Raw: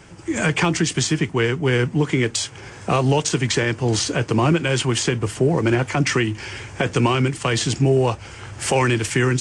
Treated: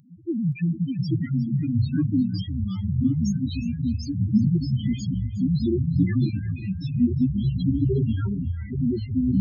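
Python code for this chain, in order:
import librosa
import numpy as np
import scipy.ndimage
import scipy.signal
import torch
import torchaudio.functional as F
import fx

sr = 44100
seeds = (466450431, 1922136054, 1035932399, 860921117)

p1 = fx.vibrato(x, sr, rate_hz=7.3, depth_cents=42.0)
p2 = fx.graphic_eq_10(p1, sr, hz=(250, 500, 2000, 8000), db=(10, -7, -5, -7))
p3 = fx.spec_topn(p2, sr, count=1)
p4 = fx.echo_pitch(p3, sr, ms=524, semitones=-4, count=3, db_per_echo=-3.0)
p5 = fx.high_shelf(p4, sr, hz=4000.0, db=11.0)
y = p5 + fx.echo_single(p5, sr, ms=360, db=-16.0, dry=0)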